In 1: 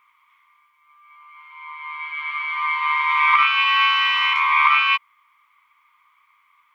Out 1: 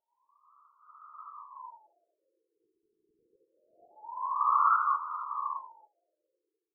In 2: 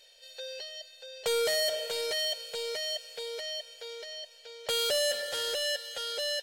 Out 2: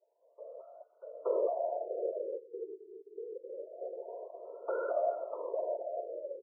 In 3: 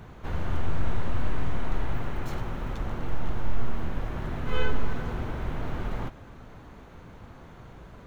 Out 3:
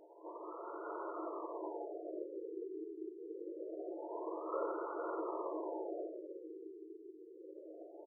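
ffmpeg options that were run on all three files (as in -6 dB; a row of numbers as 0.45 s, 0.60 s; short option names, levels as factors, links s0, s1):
-filter_complex "[0:a]asplit=2[s0][s1];[s1]acompressor=threshold=0.0316:ratio=6,volume=1.12[s2];[s0][s2]amix=inputs=2:normalize=0,afreqshift=41,afftfilt=real='hypot(re,im)*cos(2*PI*random(0))':imag='hypot(re,im)*sin(2*PI*random(1))':win_size=512:overlap=0.75,asplit=2[s3][s4];[s4]adelay=13,volume=0.224[s5];[s3][s5]amix=inputs=2:normalize=0,asplit=2[s6][s7];[s7]adelay=902,lowpass=f=1500:p=1,volume=0.447,asplit=2[s8][s9];[s9]adelay=902,lowpass=f=1500:p=1,volume=0.44,asplit=2[s10][s11];[s11]adelay=902,lowpass=f=1500:p=1,volume=0.44,asplit=2[s12][s13];[s13]adelay=902,lowpass=f=1500:p=1,volume=0.44,asplit=2[s14][s15];[s15]adelay=902,lowpass=f=1500:p=1,volume=0.44[s16];[s8][s10][s12][s14][s16]amix=inputs=5:normalize=0[s17];[s6][s17]amix=inputs=2:normalize=0,dynaudnorm=f=150:g=9:m=2,afftfilt=real='re*between(b*sr/4096,310,1900)':imag='im*between(b*sr/4096,310,1900)':win_size=4096:overlap=0.75,asuperstop=centerf=780:order=8:qfactor=7.4,asoftclip=type=tanh:threshold=0.501,afftfilt=real='re*lt(b*sr/1024,450*pow(1500/450,0.5+0.5*sin(2*PI*0.25*pts/sr)))':imag='im*lt(b*sr/1024,450*pow(1500/450,0.5+0.5*sin(2*PI*0.25*pts/sr)))':win_size=1024:overlap=0.75,volume=0.501"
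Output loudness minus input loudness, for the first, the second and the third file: -11.5 LU, -6.0 LU, -10.5 LU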